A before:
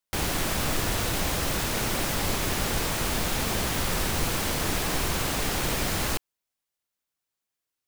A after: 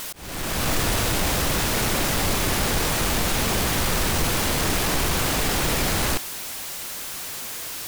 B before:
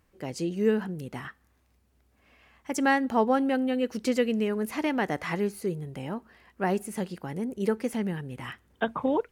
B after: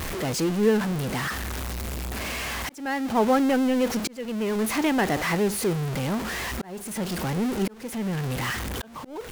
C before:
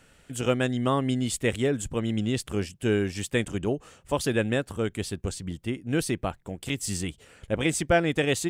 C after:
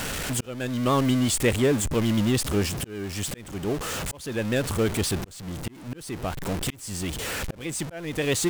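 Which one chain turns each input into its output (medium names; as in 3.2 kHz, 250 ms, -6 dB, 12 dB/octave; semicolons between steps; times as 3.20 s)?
jump at every zero crossing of -26.5 dBFS; vibrato 8.9 Hz 42 cents; slow attack 588 ms; trim +1.5 dB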